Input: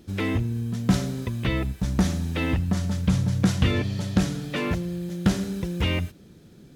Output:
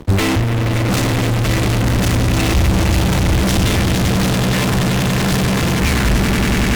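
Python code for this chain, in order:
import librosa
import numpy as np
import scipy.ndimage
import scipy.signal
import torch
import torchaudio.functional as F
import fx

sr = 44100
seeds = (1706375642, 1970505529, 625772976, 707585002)

p1 = fx.tape_stop_end(x, sr, length_s=1.06)
p2 = fx.bass_treble(p1, sr, bass_db=-3, treble_db=-3)
p3 = p2 + fx.echo_swell(p2, sr, ms=95, loudest=8, wet_db=-9.5, dry=0)
p4 = fx.fuzz(p3, sr, gain_db=47.0, gate_db=-53.0)
p5 = fx.transient(p4, sr, attack_db=4, sustain_db=-9)
p6 = fx.low_shelf(p5, sr, hz=72.0, db=9.5)
p7 = fx.band_widen(p6, sr, depth_pct=100)
y = F.gain(torch.from_numpy(p7), -2.5).numpy()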